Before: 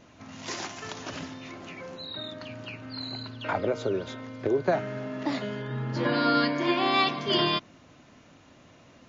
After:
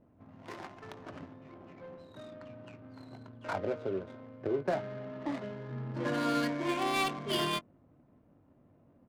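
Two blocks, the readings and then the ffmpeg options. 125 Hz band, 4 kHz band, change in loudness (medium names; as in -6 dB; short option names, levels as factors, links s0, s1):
-6.5 dB, -9.5 dB, -5.5 dB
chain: -filter_complex "[0:a]asplit=2[s0][s1];[s1]adelay=21,volume=0.335[s2];[s0][s2]amix=inputs=2:normalize=0,adynamicsmooth=sensitivity=4:basefreq=600,volume=0.447"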